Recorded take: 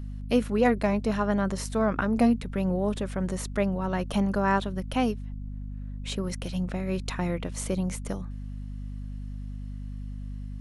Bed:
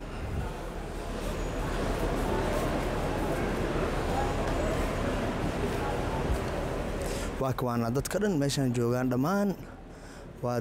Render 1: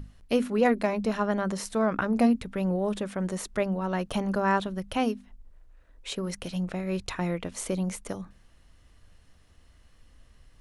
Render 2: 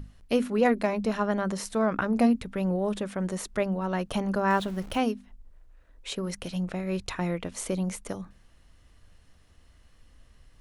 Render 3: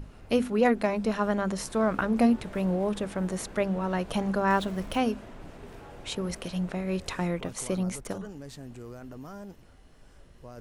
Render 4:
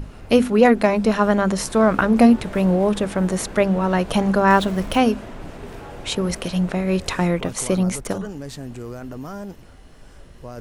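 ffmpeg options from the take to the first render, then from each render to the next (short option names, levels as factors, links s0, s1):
-af "bandreject=f=50:t=h:w=6,bandreject=f=100:t=h:w=6,bandreject=f=150:t=h:w=6,bandreject=f=200:t=h:w=6,bandreject=f=250:t=h:w=6"
-filter_complex "[0:a]asettb=1/sr,asplit=3[s0][s1][s2];[s0]atrim=end=4.504[s3];[s1]atrim=start=4.5:end=5,asetpts=PTS-STARTPTS,afade=t=in:d=0.004:c=qsin,afade=t=out:st=0.496:d=0.004:c=qsin,aeval=exprs='val(0)+0.5*0.01*sgn(val(0))':c=same[s4];[s2]atrim=start=4.996[s5];[s3][s4]acrossfade=d=0.004:c1=hsin:c2=qsin[s6];[s6][s5]acrossfade=d=0.004:c1=qsin:c2=hsin"
-filter_complex "[1:a]volume=0.168[s0];[0:a][s0]amix=inputs=2:normalize=0"
-af "volume=2.99,alimiter=limit=0.891:level=0:latency=1"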